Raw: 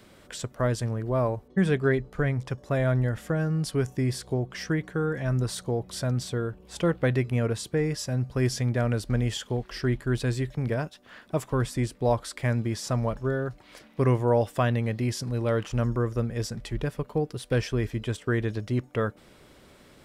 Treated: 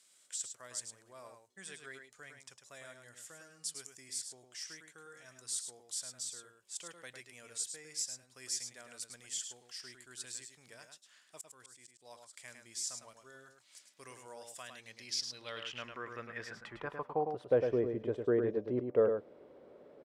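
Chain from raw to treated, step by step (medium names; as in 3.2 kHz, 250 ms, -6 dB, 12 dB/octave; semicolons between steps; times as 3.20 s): band-pass sweep 7.7 kHz -> 490 Hz, 14.65–17.76 s; 11.38–12.34 s: slow attack 358 ms; echo from a far wall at 18 m, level -6 dB; trim +3 dB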